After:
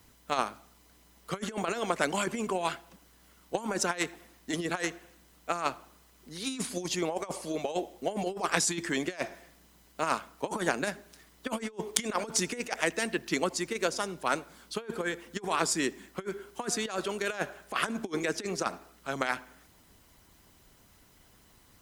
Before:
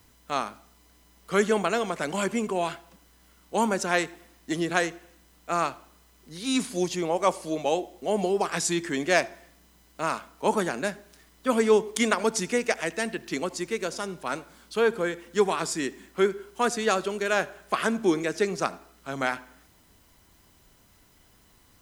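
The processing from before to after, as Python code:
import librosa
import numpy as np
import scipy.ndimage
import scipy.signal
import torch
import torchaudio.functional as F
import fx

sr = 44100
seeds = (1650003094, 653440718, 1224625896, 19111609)

y = fx.over_compress(x, sr, threshold_db=-27.0, ratio=-0.5)
y = fx.hpss(y, sr, part='percussive', gain_db=6)
y = fx.cheby_harmonics(y, sr, harmonics=(7,), levels_db=(-26,), full_scale_db=2.5)
y = y * librosa.db_to_amplitude(-3.0)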